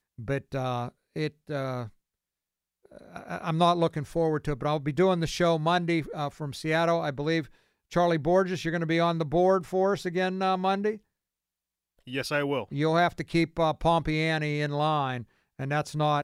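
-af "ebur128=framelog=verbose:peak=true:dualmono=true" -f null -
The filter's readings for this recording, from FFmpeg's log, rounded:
Integrated loudness:
  I:         -24.3 LUFS
  Threshold: -34.8 LUFS
Loudness range:
  LRA:         4.6 LU
  Threshold: -44.8 LUFS
  LRA low:   -27.9 LUFS
  LRA high:  -23.3 LUFS
True peak:
  Peak:      -10.2 dBFS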